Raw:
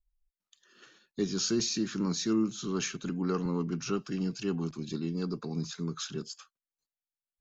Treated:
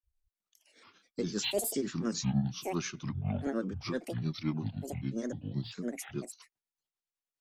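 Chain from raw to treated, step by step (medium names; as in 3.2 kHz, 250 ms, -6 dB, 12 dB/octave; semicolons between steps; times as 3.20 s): granulator 158 ms, grains 10 per s, spray 12 ms, pitch spread up and down by 12 st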